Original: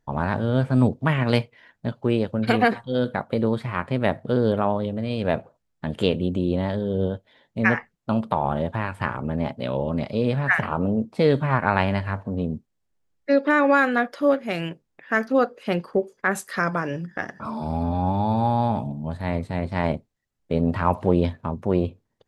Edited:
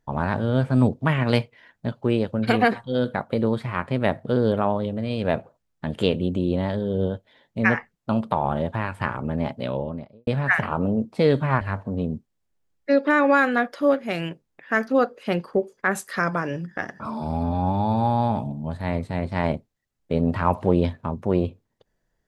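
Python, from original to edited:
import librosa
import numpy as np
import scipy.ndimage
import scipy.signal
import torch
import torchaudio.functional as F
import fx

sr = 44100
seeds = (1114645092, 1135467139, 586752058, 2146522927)

y = fx.studio_fade_out(x, sr, start_s=9.59, length_s=0.68)
y = fx.edit(y, sr, fx.cut(start_s=11.61, length_s=0.4), tone=tone)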